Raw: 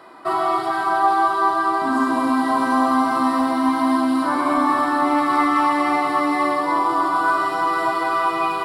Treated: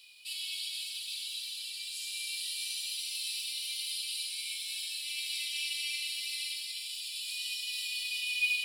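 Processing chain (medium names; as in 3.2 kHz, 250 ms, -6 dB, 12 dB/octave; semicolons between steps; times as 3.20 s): Chebyshev high-pass 2.4 kHz, order 8; in parallel at -3 dB: companded quantiser 6-bit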